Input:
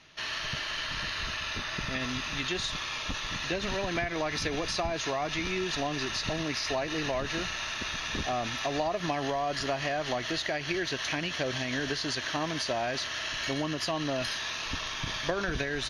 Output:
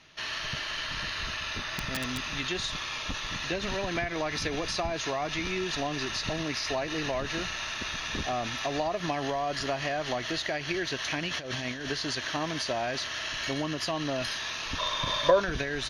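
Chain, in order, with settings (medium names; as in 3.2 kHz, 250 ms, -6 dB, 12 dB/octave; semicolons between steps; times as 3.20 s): 1.63–2.25 s: integer overflow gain 22 dB; 11.31–11.86 s: compressor with a negative ratio -34 dBFS, ratio -0.5; 14.78–15.40 s: small resonant body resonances 570/1000/3600 Hz, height 17 dB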